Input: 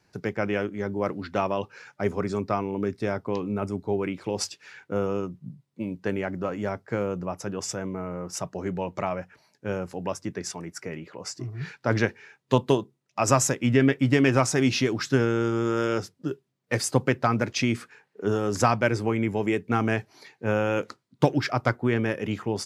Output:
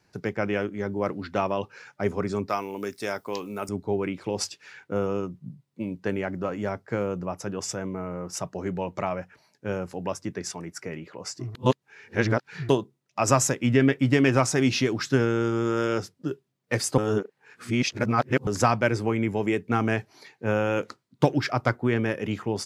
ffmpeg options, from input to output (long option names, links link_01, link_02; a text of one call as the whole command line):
ffmpeg -i in.wav -filter_complex "[0:a]asettb=1/sr,asplit=3[link_01][link_02][link_03];[link_01]atrim=end=2.494[link_04];[link_02]atrim=start=2.49:end=3.69,asetpts=PTS-STARTPTS,afade=type=in:duration=0.004:curve=qsin,afade=type=out:start_time=1.196:duration=0.004:curve=qsin,aemphasis=mode=production:type=riaa[link_05];[link_03]atrim=start=3.686[link_06];[link_04][link_05]acrossfade=duration=0.004:curve1=hsin:curve2=qsin[link_07];[link_07][link_06]acrossfade=duration=0.004:curve1=qsin:curve2=hsin,asplit=5[link_08][link_09][link_10][link_11][link_12];[link_08]atrim=end=11.552[link_13];[link_09]atrim=start=11.548:end=12.692,asetpts=PTS-STARTPTS,areverse[link_14];[link_10]atrim=start=12.688:end=16.982[link_15];[link_11]atrim=start=16.978:end=18.472,asetpts=PTS-STARTPTS,areverse[link_16];[link_12]atrim=start=18.468[link_17];[link_13][link_14]acrossfade=duration=0.004:curve1=hsin:curve2=hsin[link_18];[link_18][link_15]acrossfade=duration=0.004:curve1=hsin:curve2=hsin[link_19];[link_19][link_16]acrossfade=duration=0.004:curve1=hsin:curve2=hsin[link_20];[link_20][link_17]acrossfade=duration=0.004:curve1=hsin:curve2=hsin" out.wav